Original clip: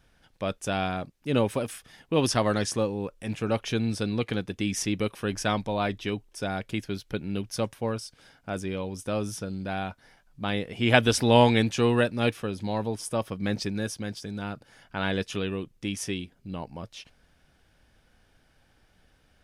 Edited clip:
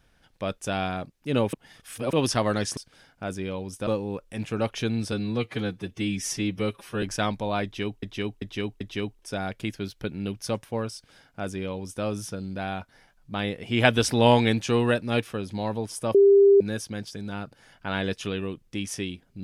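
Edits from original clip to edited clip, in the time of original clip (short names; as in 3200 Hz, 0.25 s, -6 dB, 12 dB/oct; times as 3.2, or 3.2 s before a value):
1.53–2.13 reverse
4.02–5.29 stretch 1.5×
5.9–6.29 loop, 4 plays
8.03–9.13 copy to 2.77
13.24–13.7 bleep 398 Hz -12 dBFS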